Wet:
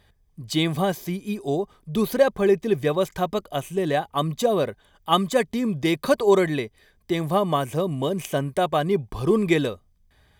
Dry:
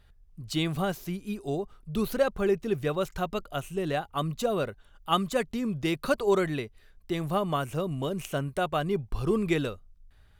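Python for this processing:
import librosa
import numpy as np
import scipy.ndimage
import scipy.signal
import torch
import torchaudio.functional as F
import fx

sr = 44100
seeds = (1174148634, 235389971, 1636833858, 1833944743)

y = fx.notch_comb(x, sr, f0_hz=1400.0)
y = y * 10.0 ** (7.0 / 20.0)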